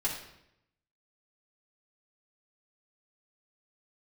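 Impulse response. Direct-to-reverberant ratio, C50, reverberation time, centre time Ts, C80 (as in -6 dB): -5.5 dB, 5.0 dB, 0.80 s, 32 ms, 8.0 dB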